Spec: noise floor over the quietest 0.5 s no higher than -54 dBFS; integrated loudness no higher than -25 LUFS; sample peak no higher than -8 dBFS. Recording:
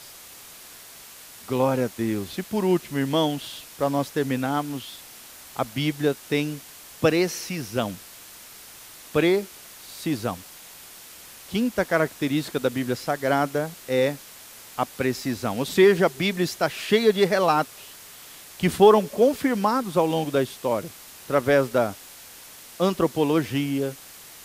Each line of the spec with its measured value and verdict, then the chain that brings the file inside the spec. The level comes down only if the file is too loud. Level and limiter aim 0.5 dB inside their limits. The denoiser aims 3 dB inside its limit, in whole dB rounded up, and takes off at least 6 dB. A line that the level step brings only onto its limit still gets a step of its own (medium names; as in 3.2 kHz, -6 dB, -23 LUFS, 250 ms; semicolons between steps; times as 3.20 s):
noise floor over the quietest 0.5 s -45 dBFS: fail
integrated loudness -24.0 LUFS: fail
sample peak -3.5 dBFS: fail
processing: noise reduction 11 dB, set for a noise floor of -45 dBFS; trim -1.5 dB; peak limiter -8.5 dBFS